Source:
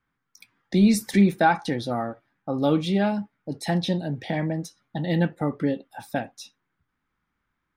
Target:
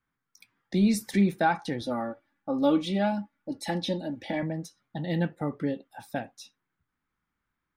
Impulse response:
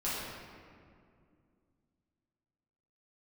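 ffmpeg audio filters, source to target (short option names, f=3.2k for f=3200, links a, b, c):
-filter_complex "[0:a]asettb=1/sr,asplit=3[a][b][c];[a]atrim=end=1.814[d];[b]atrim=start=1.81:end=4.43,asetpts=PTS-STARTPTS,afade=t=in:d=0.004:c=qsin,afade=t=out:st=2.616:d=0.004:c=qsin,aecho=1:1:3.5:0.73,atrim=end_sample=115542[e];[c]atrim=start=4.426[f];[d][e]acrossfade=d=0.004:c1=hsin:c2=qsin[g];[g][f]acrossfade=d=0.004:c1=qsin:c2=hsin,volume=-5dB"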